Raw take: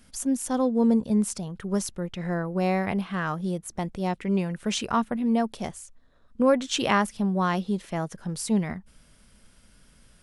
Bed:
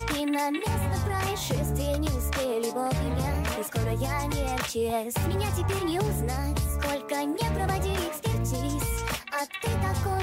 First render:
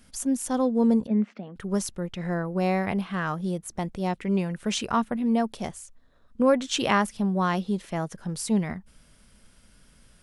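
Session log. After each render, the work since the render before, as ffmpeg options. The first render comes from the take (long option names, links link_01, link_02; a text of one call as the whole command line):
ffmpeg -i in.wav -filter_complex "[0:a]asettb=1/sr,asplit=3[link_01][link_02][link_03];[link_01]atrim=end=1.074[link_04];[link_02]atrim=start=1.07:end=1.56,asetpts=PTS-STARTPTS,afade=type=in:duration=0.004:curve=qsin,afade=type=out:start_time=0.486:duration=0.004:curve=qsin,highpass=frequency=210:width=0.5412,highpass=frequency=210:width=1.3066,equalizer=frequency=240:width_type=q:width=4:gain=5,equalizer=frequency=370:width_type=q:width=4:gain=-4,equalizer=frequency=970:width_type=q:width=4:gain=-8,equalizer=frequency=2000:width_type=q:width=4:gain=4,lowpass=frequency=2600:width=0.5412,lowpass=frequency=2600:width=1.3066[link_05];[link_03]atrim=start=1.556[link_06];[link_04][link_05]acrossfade=duration=0.004:curve1=hsin:curve2=qsin[link_07];[link_07][link_06]acrossfade=duration=0.004:curve1=qsin:curve2=hsin" out.wav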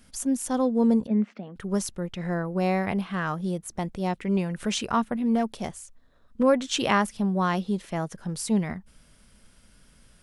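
ffmpeg -i in.wav -filter_complex "[0:a]asettb=1/sr,asplit=3[link_01][link_02][link_03];[link_01]atrim=end=4.374[link_04];[link_02]atrim=start=4.37:end=4.77,asetpts=PTS-STARTPTS,afade=type=in:duration=0.004:curve=qsin,afade=type=out:start_time=0.396:duration=0.004:curve=qsin,acompressor=mode=upward:threshold=-27dB:ratio=2.5:attack=3.2:release=140:knee=2.83:detection=peak[link_05];[link_03]atrim=start=4.766[link_06];[link_04][link_05]acrossfade=duration=0.004:curve1=hsin:curve2=qsin[link_07];[link_07][link_06]acrossfade=duration=0.004:curve1=qsin:curve2=hsin,asettb=1/sr,asplit=3[link_08][link_09][link_10];[link_08]atrim=end=5.354[link_11];[link_09]atrim=start=5.35:end=6.43,asetpts=PTS-STARTPTS,afade=type=in:duration=0.004:curve=qsin,afade=type=out:start_time=1.076:duration=0.004:curve=qsin,asoftclip=type=hard:threshold=-17.5dB[link_12];[link_10]atrim=start=6.426[link_13];[link_11][link_12]acrossfade=duration=0.004:curve1=hsin:curve2=qsin[link_14];[link_14][link_13]acrossfade=duration=0.004:curve1=qsin:curve2=hsin" out.wav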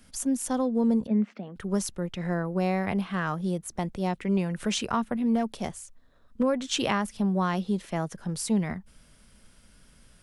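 ffmpeg -i in.wav -filter_complex "[0:a]acrossover=split=180[link_01][link_02];[link_02]acompressor=threshold=-23dB:ratio=4[link_03];[link_01][link_03]amix=inputs=2:normalize=0" out.wav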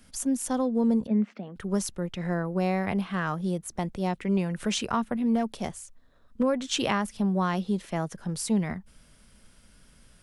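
ffmpeg -i in.wav -af anull out.wav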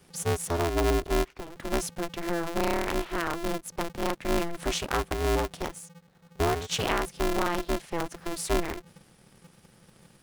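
ffmpeg -i in.wav -af "aeval=exprs='if(lt(val(0),0),0.708*val(0),val(0))':channel_layout=same,aeval=exprs='val(0)*sgn(sin(2*PI*170*n/s))':channel_layout=same" out.wav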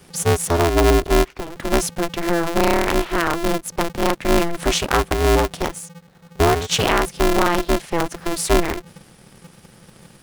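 ffmpeg -i in.wav -af "volume=10dB,alimiter=limit=-2dB:level=0:latency=1" out.wav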